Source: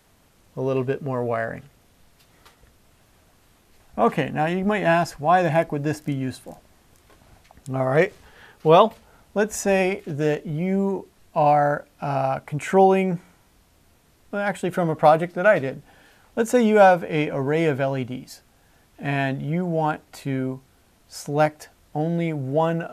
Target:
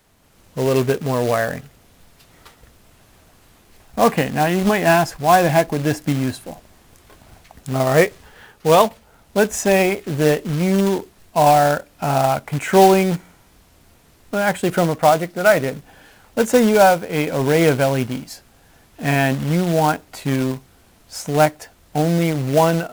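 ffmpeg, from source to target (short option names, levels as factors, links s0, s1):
-af "acrusher=bits=3:mode=log:mix=0:aa=0.000001,dynaudnorm=f=200:g=3:m=2"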